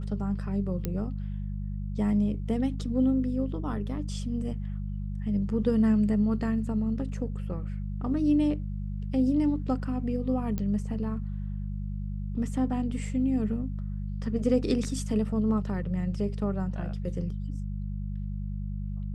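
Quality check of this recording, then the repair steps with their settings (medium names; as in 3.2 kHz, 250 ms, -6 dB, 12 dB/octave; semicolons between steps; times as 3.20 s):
hum 50 Hz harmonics 4 -33 dBFS
0.85 s: pop -16 dBFS
10.58 s: pop -19 dBFS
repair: de-click; de-hum 50 Hz, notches 4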